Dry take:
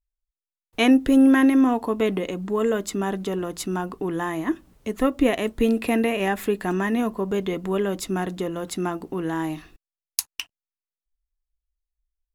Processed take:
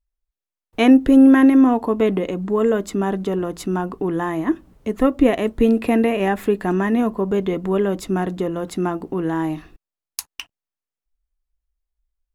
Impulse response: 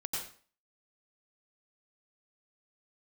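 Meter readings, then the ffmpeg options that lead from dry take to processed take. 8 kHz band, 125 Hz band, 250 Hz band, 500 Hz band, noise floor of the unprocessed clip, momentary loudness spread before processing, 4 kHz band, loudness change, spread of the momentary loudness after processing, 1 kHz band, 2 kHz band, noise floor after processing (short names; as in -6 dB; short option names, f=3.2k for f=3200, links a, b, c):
-3.5 dB, +5.0 dB, +5.0 dB, +4.5 dB, under -85 dBFS, 13 LU, -1.5 dB, +4.5 dB, 14 LU, +3.5 dB, +0.5 dB, under -85 dBFS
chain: -af "highshelf=f=2k:g=-9,volume=5dB"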